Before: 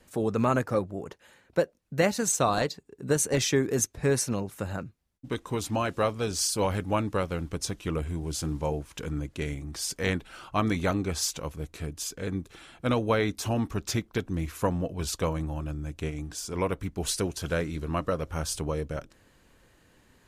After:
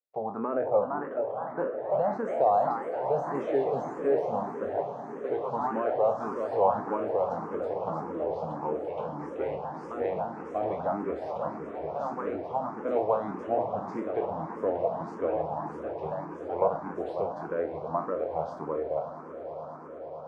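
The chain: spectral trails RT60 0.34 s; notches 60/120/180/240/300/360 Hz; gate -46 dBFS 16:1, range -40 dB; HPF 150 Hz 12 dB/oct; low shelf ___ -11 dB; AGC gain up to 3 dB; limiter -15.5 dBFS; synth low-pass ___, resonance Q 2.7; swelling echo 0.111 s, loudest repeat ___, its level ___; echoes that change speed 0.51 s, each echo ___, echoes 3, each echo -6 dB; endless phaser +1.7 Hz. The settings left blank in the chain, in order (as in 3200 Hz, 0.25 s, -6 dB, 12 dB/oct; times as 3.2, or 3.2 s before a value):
330 Hz, 750 Hz, 8, -18 dB, +2 st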